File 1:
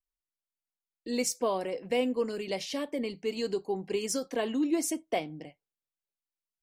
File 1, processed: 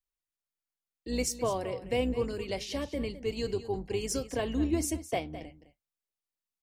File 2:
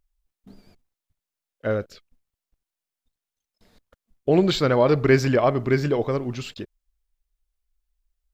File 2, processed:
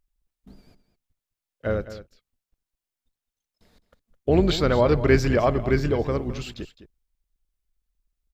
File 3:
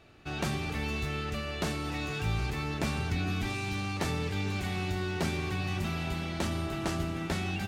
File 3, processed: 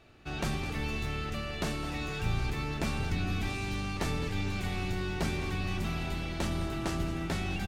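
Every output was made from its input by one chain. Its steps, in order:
sub-octave generator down 2 octaves, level −3 dB
single-tap delay 210 ms −14 dB
level −1.5 dB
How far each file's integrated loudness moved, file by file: −1.0, −1.0, −1.0 LU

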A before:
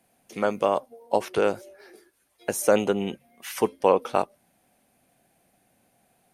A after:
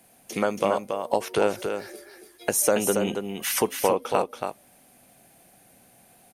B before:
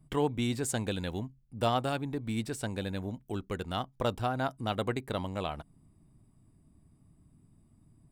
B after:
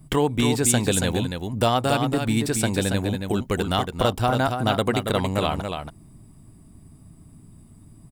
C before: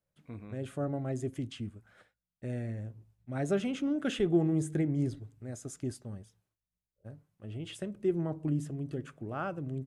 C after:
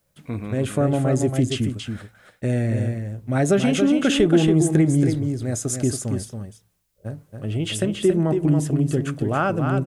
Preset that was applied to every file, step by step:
downward compressor 2 to 1, threshold −33 dBFS
high-shelf EQ 5,100 Hz +6 dB
single-tap delay 279 ms −6 dB
normalise the peak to −6 dBFS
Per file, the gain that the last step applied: +7.0, +12.5, +15.5 decibels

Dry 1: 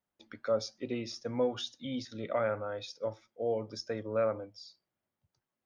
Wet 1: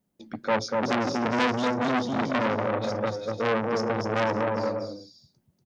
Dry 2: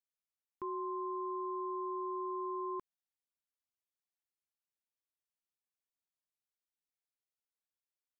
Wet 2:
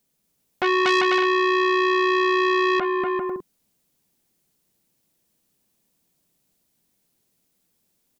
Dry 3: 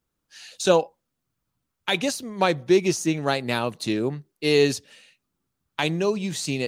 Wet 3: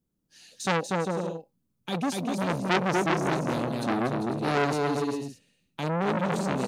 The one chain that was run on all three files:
drawn EQ curve 100 Hz 0 dB, 180 Hz +9 dB, 1,300 Hz −11 dB, 12,000 Hz −3 dB
bouncing-ball delay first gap 240 ms, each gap 0.65×, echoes 5
saturating transformer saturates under 2,300 Hz
normalise the peak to −6 dBFS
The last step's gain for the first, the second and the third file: +11.5, +26.0, −2.0 decibels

